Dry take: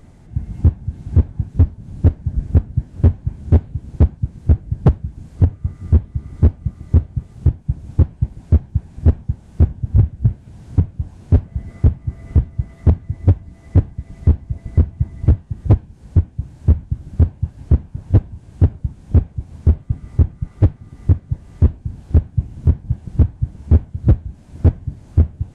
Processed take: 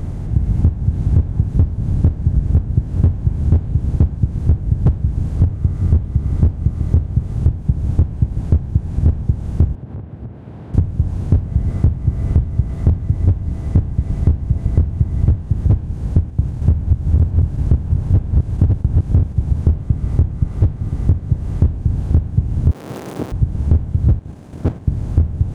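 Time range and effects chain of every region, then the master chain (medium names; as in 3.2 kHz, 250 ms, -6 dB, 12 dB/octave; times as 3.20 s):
9.75–10.74 s: high-pass 390 Hz + compression 16:1, threshold -45 dBFS + distance through air 470 m
16.18–19.60 s: chunks repeated in reverse 376 ms, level -4.5 dB + gate -39 dBFS, range -7 dB
22.71–23.32 s: jump at every zero crossing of -25 dBFS + high-pass 330 Hz 24 dB/octave
24.19–24.88 s: high-pass 300 Hz + waveshaping leveller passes 1 + level held to a coarse grid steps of 10 dB
whole clip: spectral levelling over time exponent 0.6; bass shelf 160 Hz +9 dB; compression, threshold -8 dBFS; trim -2 dB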